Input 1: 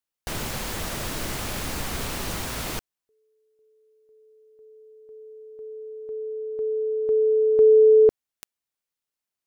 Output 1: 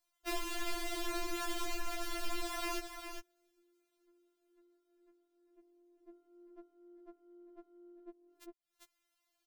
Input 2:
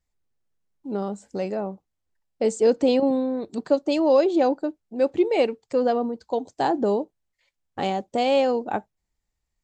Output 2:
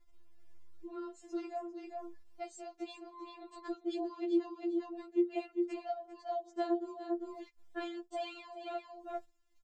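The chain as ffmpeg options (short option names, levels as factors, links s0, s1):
-af "highshelf=f=5600:g=-8,tremolo=f=42:d=0.947,acompressor=mode=upward:threshold=0.00708:ratio=2.5:attack=0.3:release=188:knee=2.83:detection=peak,aecho=1:1:398:0.316,acompressor=threshold=0.0282:ratio=16:attack=7.9:release=544:knee=1:detection=peak,agate=range=0.224:threshold=0.001:ratio=16:release=47:detection=rms,afftfilt=real='re*4*eq(mod(b,16),0)':imag='im*4*eq(mod(b,16),0)':win_size=2048:overlap=0.75,volume=1.41"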